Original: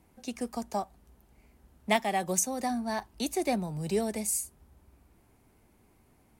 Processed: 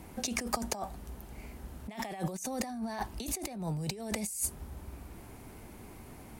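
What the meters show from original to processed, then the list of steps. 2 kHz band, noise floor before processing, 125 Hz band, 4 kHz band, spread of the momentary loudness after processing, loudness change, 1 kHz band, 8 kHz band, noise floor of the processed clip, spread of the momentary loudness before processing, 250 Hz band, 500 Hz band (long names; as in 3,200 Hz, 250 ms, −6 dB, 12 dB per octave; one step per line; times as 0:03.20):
−5.5 dB, −64 dBFS, +1.0 dB, −2.0 dB, 16 LU, −6.0 dB, −7.0 dB, −4.0 dB, −50 dBFS, 11 LU, −4.5 dB, −8.5 dB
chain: compressor whose output falls as the input rises −42 dBFS, ratio −1
level +5 dB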